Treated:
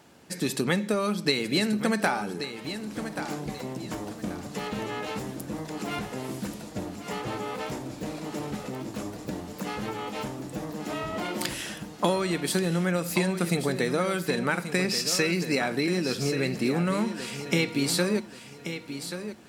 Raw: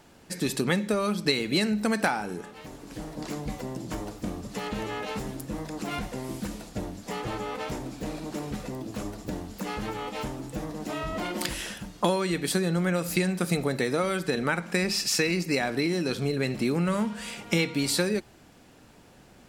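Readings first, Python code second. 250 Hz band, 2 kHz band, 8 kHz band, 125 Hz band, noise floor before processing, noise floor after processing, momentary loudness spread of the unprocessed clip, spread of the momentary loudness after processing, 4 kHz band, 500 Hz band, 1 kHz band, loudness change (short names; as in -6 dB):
+0.5 dB, +0.5 dB, +0.5 dB, 0.0 dB, -54 dBFS, -44 dBFS, 11 LU, 11 LU, +0.5 dB, +0.5 dB, +0.5 dB, 0.0 dB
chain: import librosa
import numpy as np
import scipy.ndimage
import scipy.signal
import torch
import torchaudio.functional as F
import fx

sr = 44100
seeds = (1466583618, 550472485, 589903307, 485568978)

y = scipy.signal.sosfilt(scipy.signal.butter(2, 92.0, 'highpass', fs=sr, output='sos'), x)
y = fx.echo_feedback(y, sr, ms=1132, feedback_pct=29, wet_db=-10.0)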